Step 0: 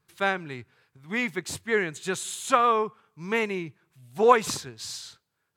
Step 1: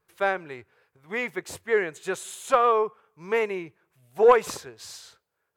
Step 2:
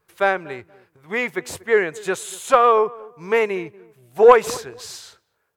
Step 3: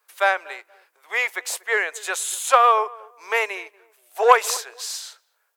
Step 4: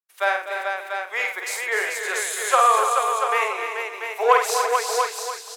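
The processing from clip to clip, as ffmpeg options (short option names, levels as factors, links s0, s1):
-af "equalizer=f=125:t=o:w=1:g=-8,equalizer=f=250:t=o:w=1:g=-7,equalizer=f=500:t=o:w=1:g=7,equalizer=f=4000:t=o:w=1:g=-6,equalizer=f=8000:t=o:w=1:g=-4,asoftclip=type=tanh:threshold=0.447"
-filter_complex "[0:a]asplit=2[s0][s1];[s1]adelay=237,lowpass=f=950:p=1,volume=0.0944,asplit=2[s2][s3];[s3]adelay=237,lowpass=f=950:p=1,volume=0.28[s4];[s0][s2][s4]amix=inputs=3:normalize=0,volume=2"
-af "highpass=f=580:w=0.5412,highpass=f=580:w=1.3066,highshelf=f=3300:g=7.5"
-filter_complex "[0:a]asplit=2[s0][s1];[s1]aecho=0:1:49|99|252|436|689:0.596|0.237|0.282|0.562|0.473[s2];[s0][s2]amix=inputs=2:normalize=0,agate=range=0.0224:threshold=0.00631:ratio=3:detection=peak,asplit=2[s3][s4];[s4]aecho=0:1:291|582|873|1164:0.355|0.117|0.0386|0.0128[s5];[s3][s5]amix=inputs=2:normalize=0,volume=0.668"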